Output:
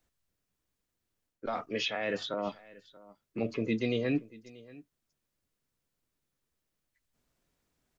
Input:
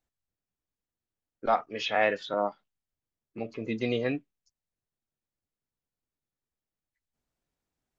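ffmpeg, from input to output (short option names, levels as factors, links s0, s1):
-filter_complex "[0:a]bandreject=f=50:t=h:w=6,bandreject=f=100:t=h:w=6,areverse,acompressor=threshold=0.0224:ratio=6,areverse,equalizer=f=800:w=6.1:g=-5,acrossover=split=370|3000[s0][s1][s2];[s1]acompressor=threshold=0.00891:ratio=6[s3];[s0][s3][s2]amix=inputs=3:normalize=0,aecho=1:1:633:0.0891,volume=2.51"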